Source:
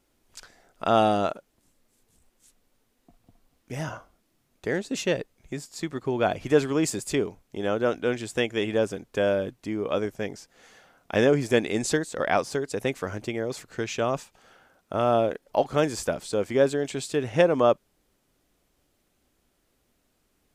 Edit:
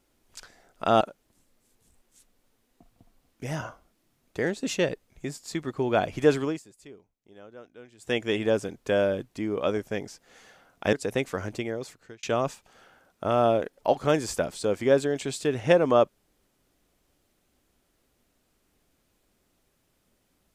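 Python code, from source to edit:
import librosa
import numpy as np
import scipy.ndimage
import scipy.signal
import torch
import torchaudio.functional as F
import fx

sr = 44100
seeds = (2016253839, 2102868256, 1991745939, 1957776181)

y = fx.edit(x, sr, fx.cut(start_s=1.01, length_s=0.28),
    fx.fade_down_up(start_s=6.69, length_s=1.76, db=-22.0, fade_s=0.19),
    fx.cut(start_s=11.21, length_s=1.41),
    fx.fade_out_span(start_s=13.24, length_s=0.68), tone=tone)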